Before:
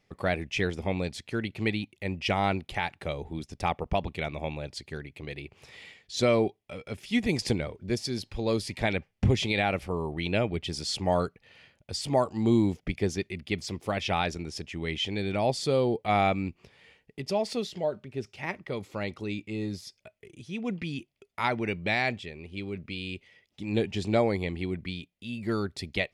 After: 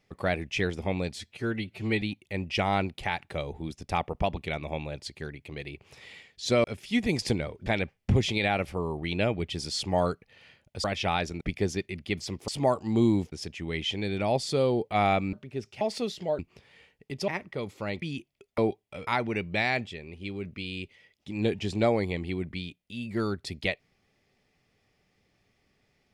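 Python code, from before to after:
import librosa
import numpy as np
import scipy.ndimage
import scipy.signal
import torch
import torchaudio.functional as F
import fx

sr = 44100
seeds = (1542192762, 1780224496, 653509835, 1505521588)

y = fx.edit(x, sr, fx.stretch_span(start_s=1.15, length_s=0.58, factor=1.5),
    fx.move(start_s=6.35, length_s=0.49, to_s=21.39),
    fx.cut(start_s=7.86, length_s=0.94),
    fx.swap(start_s=11.98, length_s=0.84, other_s=13.89, other_length_s=0.57),
    fx.swap(start_s=16.47, length_s=0.89, other_s=17.94, other_length_s=0.48),
    fx.cut(start_s=19.16, length_s=1.67), tone=tone)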